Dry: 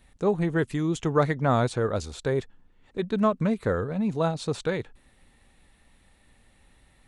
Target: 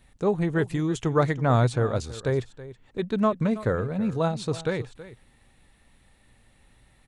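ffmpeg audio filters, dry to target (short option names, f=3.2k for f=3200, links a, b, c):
-af "equalizer=f=120:t=o:w=0.28:g=7,aecho=1:1:325:0.158"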